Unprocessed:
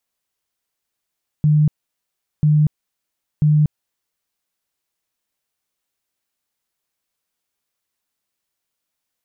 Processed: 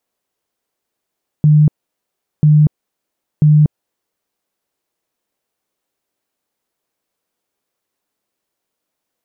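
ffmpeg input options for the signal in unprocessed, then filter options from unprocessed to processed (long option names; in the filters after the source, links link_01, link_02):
-f lavfi -i "aevalsrc='0.299*sin(2*PI*151*mod(t,0.99))*lt(mod(t,0.99),36/151)':duration=2.97:sample_rate=44100"
-af "equalizer=frequency=410:width=0.44:gain=10.5"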